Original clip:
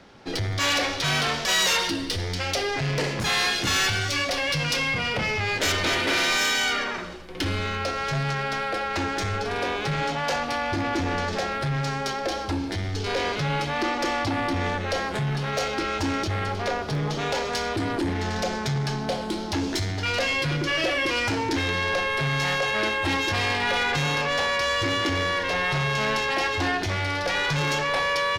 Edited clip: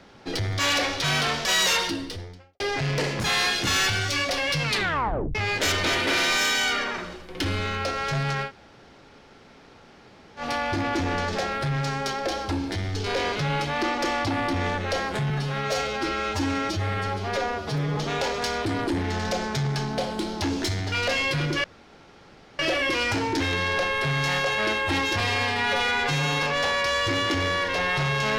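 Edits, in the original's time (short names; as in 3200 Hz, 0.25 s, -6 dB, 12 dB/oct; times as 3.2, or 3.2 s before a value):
1.74–2.6 studio fade out
4.63 tape stop 0.72 s
8.47–10.41 room tone, crossfade 0.10 s
15.3–17.08 stretch 1.5×
20.75 insert room tone 0.95 s
23.36–24.18 stretch 1.5×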